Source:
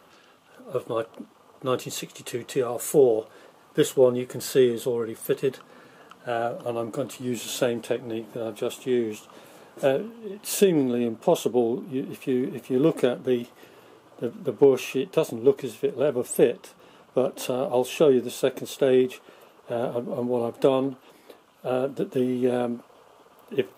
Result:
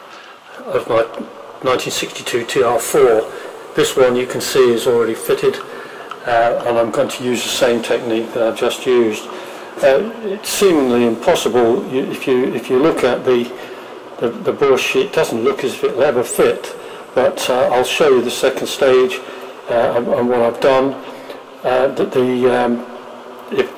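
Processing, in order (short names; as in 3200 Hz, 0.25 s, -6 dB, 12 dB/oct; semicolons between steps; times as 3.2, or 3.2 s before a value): overdrive pedal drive 25 dB, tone 2700 Hz, clips at -5.5 dBFS; two-slope reverb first 0.24 s, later 4.7 s, from -21 dB, DRR 8.5 dB; gain +2 dB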